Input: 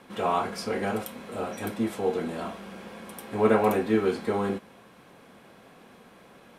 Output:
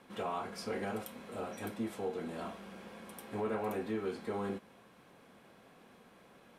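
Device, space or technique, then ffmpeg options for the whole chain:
soft clipper into limiter: -af "asoftclip=type=tanh:threshold=0.211,alimiter=limit=0.0944:level=0:latency=1:release=318,volume=0.422"

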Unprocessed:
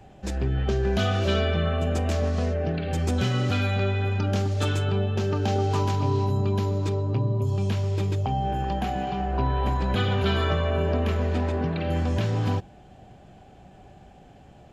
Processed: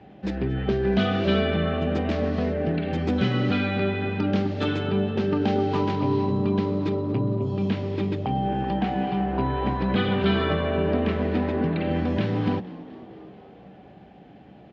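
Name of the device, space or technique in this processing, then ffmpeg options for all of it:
frequency-shifting delay pedal into a guitar cabinet: -filter_complex "[0:a]asplit=7[s0][s1][s2][s3][s4][s5][s6];[s1]adelay=231,afreqshift=73,volume=0.0944[s7];[s2]adelay=462,afreqshift=146,volume=0.0603[s8];[s3]adelay=693,afreqshift=219,volume=0.0385[s9];[s4]adelay=924,afreqshift=292,volume=0.0248[s10];[s5]adelay=1155,afreqshift=365,volume=0.0158[s11];[s6]adelay=1386,afreqshift=438,volume=0.0101[s12];[s0][s7][s8][s9][s10][s11][s12]amix=inputs=7:normalize=0,highpass=86,equalizer=f=96:t=q:w=4:g=-5,equalizer=f=200:t=q:w=4:g=7,equalizer=f=300:t=q:w=4:g=7,equalizer=f=450:t=q:w=4:g=3,equalizer=f=2000:t=q:w=4:g=4,lowpass=f=4300:w=0.5412,lowpass=f=4300:w=1.3066"

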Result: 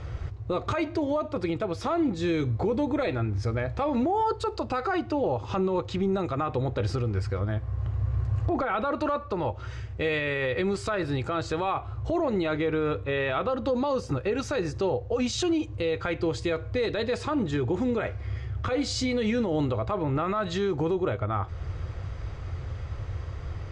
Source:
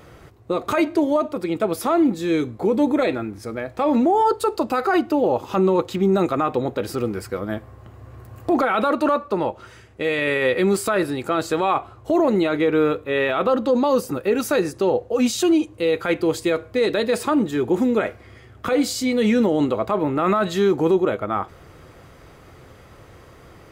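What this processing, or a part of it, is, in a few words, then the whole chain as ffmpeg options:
car stereo with a boomy subwoofer: -filter_complex "[0:a]lowpass=f=6500:w=0.5412,lowpass=f=6500:w=1.3066,asettb=1/sr,asplit=3[s0][s1][s2];[s0]atrim=end=8.464[s3];[s1]atrim=start=8.46:end=8.95,asetpts=PTS-STARTPTS,afade=t=in:d=0.004:c=qsin,afade=t=out:st=0.486:d=0.004:c=qsin,equalizer=f=6600:w=0.35:g=-5.5[s4];[s2]atrim=start=8.946[s5];[s3][s4]acrossfade=d=0.004:c1=hsin:c2=qsin[s6];[s6][s5]acrossfade=d=0.004:c1=qsin:c2=hsin,lowshelf=f=140:t=q:w=1.5:g=13.5,alimiter=limit=0.106:level=0:latency=1:release=276,volume=1.12"

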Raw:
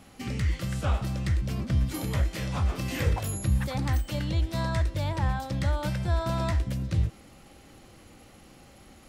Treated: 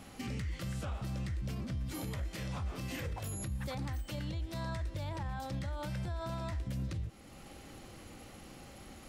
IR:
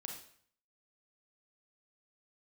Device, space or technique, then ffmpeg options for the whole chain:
stacked limiters: -af "alimiter=limit=0.0944:level=0:latency=1:release=491,alimiter=level_in=1.33:limit=0.0631:level=0:latency=1:release=361,volume=0.75,alimiter=level_in=2.51:limit=0.0631:level=0:latency=1:release=65,volume=0.398,volume=1.12"

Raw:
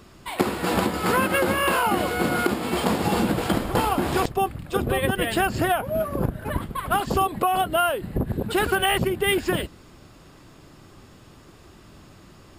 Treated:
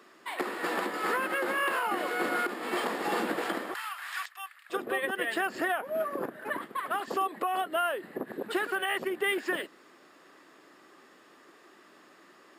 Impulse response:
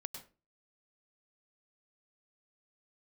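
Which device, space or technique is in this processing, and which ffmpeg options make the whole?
laptop speaker: -filter_complex "[0:a]highpass=f=330:w=0.5412,highpass=f=330:w=1.3066,equalizer=f=1200:t=o:w=0.27:g=4.5,equalizer=f=1800:t=o:w=0.34:g=9.5,alimiter=limit=0.211:level=0:latency=1:release=255,asettb=1/sr,asplit=3[s0][s1][s2];[s0]atrim=end=3.744[s3];[s1]atrim=start=3.74:end=4.7,asetpts=PTS-STARTPTS,afade=t=in:d=0.004:c=qsin,afade=t=out:st=0.956:d=0.004:c=qsin,highpass=f=1300:w=0.5412,highpass=f=1300:w=1.3066[s4];[s2]atrim=start=4.696[s5];[s3][s4]acrossfade=d=0.004:c1=hsin:c2=qsin[s6];[s6][s5]acrossfade=d=0.004:c1=qsin:c2=hsin,bass=f=250:g=9,treble=f=4000:g=-3,volume=0.501"

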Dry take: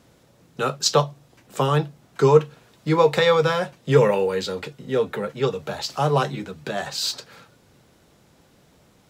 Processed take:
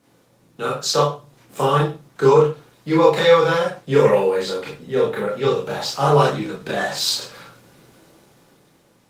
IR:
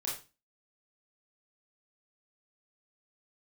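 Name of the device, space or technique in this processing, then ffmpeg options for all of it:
far-field microphone of a smart speaker: -filter_complex "[1:a]atrim=start_sample=2205[s0];[0:a][s0]afir=irnorm=-1:irlink=0,highpass=120,dynaudnorm=f=210:g=11:m=4.73,volume=0.891" -ar 48000 -c:a libopus -b:a 24k

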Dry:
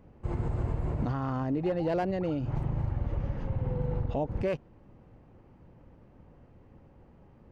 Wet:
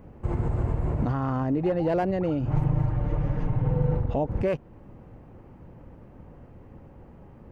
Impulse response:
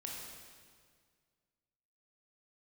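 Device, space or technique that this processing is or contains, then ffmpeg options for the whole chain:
parallel compression: -filter_complex "[0:a]asettb=1/sr,asplit=3[s0][s1][s2];[s0]atrim=end=2.504[s3];[s1]atrim=start=2.5:end=3.97,asetpts=PTS-STARTPTS,afade=t=in:d=0.004:c=qsin,afade=t=out:st=1.466:d=0.004:c=qsin,aecho=1:1:6.6:0.9,atrim=end_sample=64827[s4];[s2]atrim=start=3.966[s5];[s3][s4]acrossfade=d=0.004:c1=hsin:c2=qsin[s6];[s6][s5]acrossfade=d=0.004:c1=qsin:c2=hsin,asplit=2[s7][s8];[s8]acompressor=threshold=0.0126:ratio=6,volume=0.891[s9];[s7][s9]amix=inputs=2:normalize=0,equalizer=f=4400:t=o:w=1.4:g=-5.5,volume=1.33"

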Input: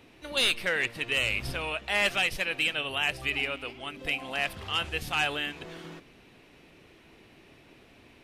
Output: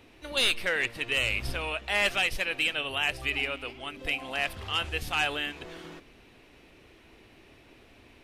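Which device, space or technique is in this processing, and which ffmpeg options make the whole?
low shelf boost with a cut just above: -af "lowshelf=f=92:g=6,equalizer=f=160:t=o:w=0.73:g=-6"

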